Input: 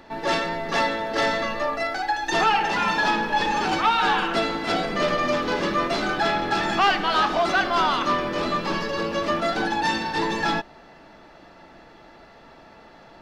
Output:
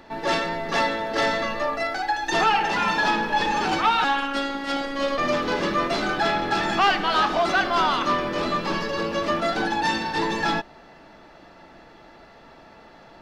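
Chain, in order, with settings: 4.04–5.18 robotiser 278 Hz

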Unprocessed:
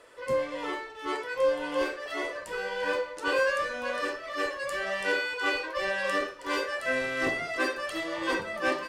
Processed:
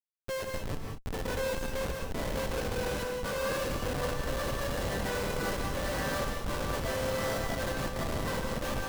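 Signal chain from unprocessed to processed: 0.78–1.53 comb 4.1 ms, depth 65%; on a send: diffused feedback echo 0.923 s, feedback 52%, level -10 dB; on the sum: FFT band-pass 420–2000 Hz; Schmitt trigger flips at -29 dBFS; non-linear reverb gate 0.22 s rising, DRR 1.5 dB; gain -3.5 dB

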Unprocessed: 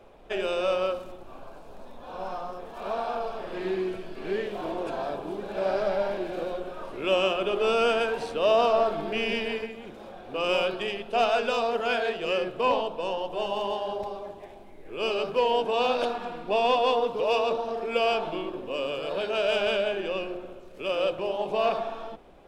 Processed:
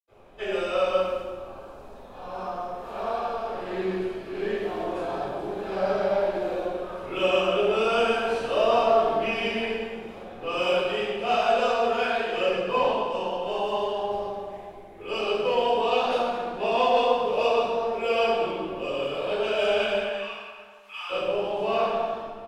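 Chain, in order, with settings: 19.86–21.02 elliptic high-pass 840 Hz; outdoor echo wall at 110 m, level -24 dB; reverb RT60 1.4 s, pre-delay 76 ms; gain +4 dB

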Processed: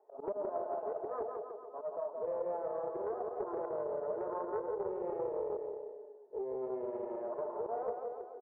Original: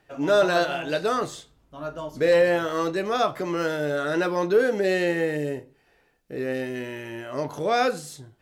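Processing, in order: Chebyshev band-pass 390–970 Hz, order 3; comb 4.7 ms, depth 52%; auto swell 0.105 s; compressor 10:1, threshold -36 dBFS, peak gain reduction 20 dB; bouncing-ball echo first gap 0.17 s, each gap 0.9×, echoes 5; Doppler distortion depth 0.22 ms

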